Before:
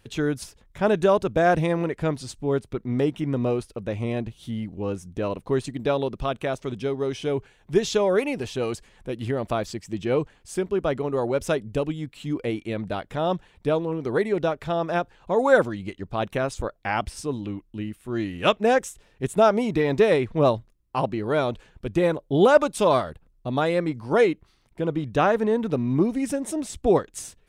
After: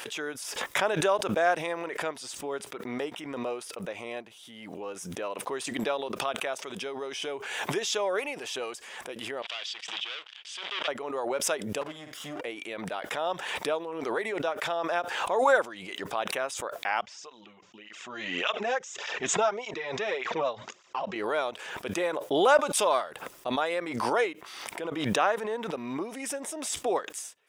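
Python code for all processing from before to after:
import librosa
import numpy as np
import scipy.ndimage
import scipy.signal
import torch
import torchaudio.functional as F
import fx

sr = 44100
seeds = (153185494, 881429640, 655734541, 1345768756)

y = fx.chain(x, sr, fx.leveller(passes=5),
    fx.bandpass_q(hz=3300.0, q=3.5),
    fx.air_absorb(metres=70.0), at=(9.42, 10.88))
y = fx.chain(y, sr, fx.lower_of_two(delay_ms=0.58),
    fx.low_shelf(hz=160.0, db=10.0),
    fx.room_flutter(wall_m=8.3, rt60_s=0.23), at=(11.81, 12.41))
y = fx.chain(y, sr, fx.ellip_lowpass(hz=7000.0, order=4, stop_db=40),
    fx.notch(hz=300.0, q=5.9),
    fx.flanger_cancel(hz=1.7, depth_ms=3.5), at=(17.01, 21.16))
y = scipy.signal.sosfilt(scipy.signal.butter(2, 650.0, 'highpass', fs=sr, output='sos'), y)
y = fx.notch(y, sr, hz=4200.0, q=9.4)
y = fx.pre_swell(y, sr, db_per_s=37.0)
y = y * librosa.db_to_amplitude(-2.5)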